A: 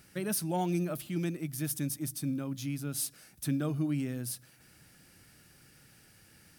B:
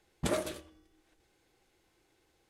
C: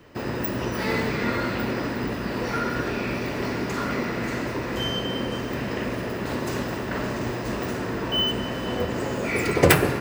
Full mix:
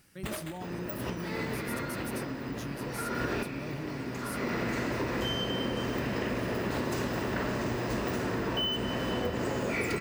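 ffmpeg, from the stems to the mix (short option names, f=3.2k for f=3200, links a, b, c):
-filter_complex "[0:a]alimiter=level_in=5.5dB:limit=-24dB:level=0:latency=1:release=30,volume=-5.5dB,volume=-4dB,asplit=2[a][b];[1:a]equalizer=f=510:w=0.32:g=-8,acrusher=samples=8:mix=1:aa=0.000001,volume=-0.5dB[c];[2:a]adelay=450,volume=1dB[d];[b]apad=whole_len=461228[e];[d][e]sidechaincompress=threshold=-52dB:ratio=5:attack=44:release=276[f];[a][c][f]amix=inputs=3:normalize=0,acompressor=threshold=-28dB:ratio=6"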